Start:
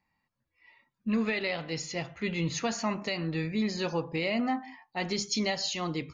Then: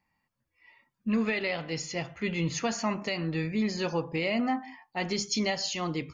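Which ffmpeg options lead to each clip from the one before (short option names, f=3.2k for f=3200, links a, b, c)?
-af "bandreject=f=3.9k:w=11,volume=1dB"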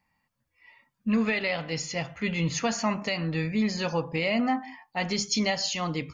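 -af "equalizer=f=360:t=o:w=0.26:g=-9.5,volume=3dB"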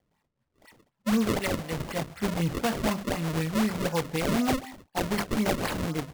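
-af "acrusher=samples=32:mix=1:aa=0.000001:lfo=1:lforange=51.2:lforate=4"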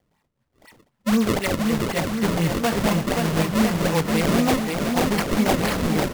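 -af "aecho=1:1:530|1007|1436|1823|2170:0.631|0.398|0.251|0.158|0.1,volume=5dB"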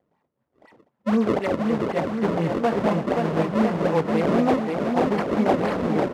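-af "bandpass=f=510:t=q:w=0.65:csg=0,volume=2.5dB"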